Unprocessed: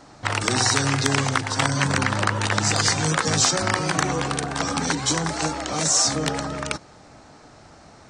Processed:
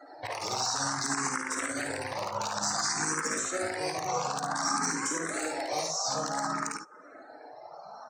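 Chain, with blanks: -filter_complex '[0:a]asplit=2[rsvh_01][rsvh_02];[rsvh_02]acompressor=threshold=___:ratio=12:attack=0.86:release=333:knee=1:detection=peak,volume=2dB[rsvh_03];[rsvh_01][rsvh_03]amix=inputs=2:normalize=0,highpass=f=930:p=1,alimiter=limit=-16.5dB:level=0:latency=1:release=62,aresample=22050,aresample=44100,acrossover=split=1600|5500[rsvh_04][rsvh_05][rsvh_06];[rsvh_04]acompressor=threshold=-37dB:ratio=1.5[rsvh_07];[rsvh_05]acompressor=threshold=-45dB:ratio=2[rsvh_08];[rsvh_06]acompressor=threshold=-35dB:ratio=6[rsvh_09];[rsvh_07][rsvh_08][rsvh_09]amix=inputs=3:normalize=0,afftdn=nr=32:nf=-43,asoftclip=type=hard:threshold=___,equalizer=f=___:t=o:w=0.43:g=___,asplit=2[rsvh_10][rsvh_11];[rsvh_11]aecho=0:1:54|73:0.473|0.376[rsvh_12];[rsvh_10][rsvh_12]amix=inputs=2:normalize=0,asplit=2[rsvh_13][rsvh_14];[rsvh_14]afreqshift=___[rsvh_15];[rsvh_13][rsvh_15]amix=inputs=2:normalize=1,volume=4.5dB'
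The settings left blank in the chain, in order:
-32dB, -24dB, 3200, -11, 0.55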